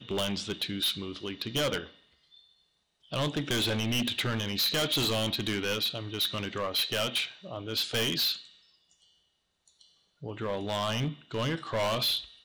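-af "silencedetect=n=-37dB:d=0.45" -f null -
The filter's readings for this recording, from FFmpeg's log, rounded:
silence_start: 1.85
silence_end: 3.12 | silence_duration: 1.28
silence_start: 8.39
silence_end: 10.23 | silence_duration: 1.84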